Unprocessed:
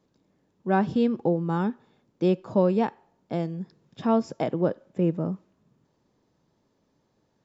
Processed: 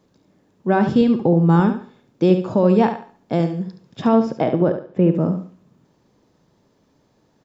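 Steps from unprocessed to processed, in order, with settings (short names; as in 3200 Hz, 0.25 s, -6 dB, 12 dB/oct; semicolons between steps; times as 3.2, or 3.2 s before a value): 1.01–1.6 low shelf 150 Hz +8.5 dB; limiter -15 dBFS, peak gain reduction 6 dB; 4.15–5.15 air absorption 160 m; feedback echo 71 ms, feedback 29%, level -9 dB; Schroeder reverb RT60 0.55 s, combs from 29 ms, DRR 17 dB; gain +8.5 dB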